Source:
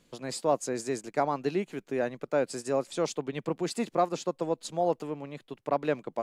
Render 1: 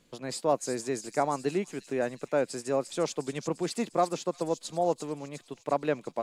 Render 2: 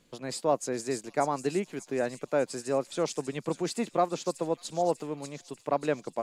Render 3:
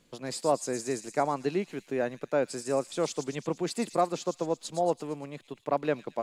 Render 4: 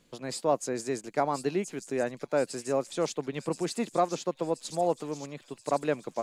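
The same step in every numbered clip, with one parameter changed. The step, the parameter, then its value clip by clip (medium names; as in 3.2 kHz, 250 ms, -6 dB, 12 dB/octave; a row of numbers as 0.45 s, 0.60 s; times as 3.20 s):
feedback echo behind a high-pass, time: 351 ms, 592 ms, 114 ms, 1028 ms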